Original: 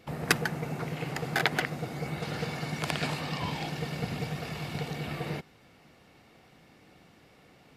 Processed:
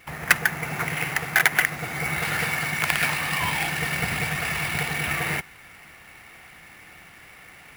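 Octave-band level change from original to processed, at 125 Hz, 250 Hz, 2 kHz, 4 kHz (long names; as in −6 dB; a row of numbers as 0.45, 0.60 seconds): +2.0, +0.5, +12.0, +6.5 decibels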